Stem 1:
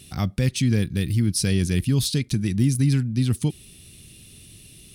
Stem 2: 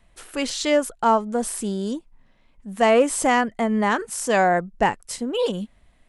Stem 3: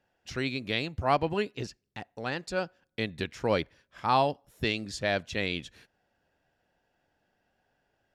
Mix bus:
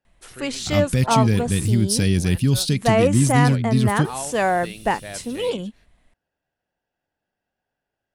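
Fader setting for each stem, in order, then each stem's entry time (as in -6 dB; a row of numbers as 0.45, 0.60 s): +2.5, -1.5, -8.0 dB; 0.55, 0.05, 0.00 s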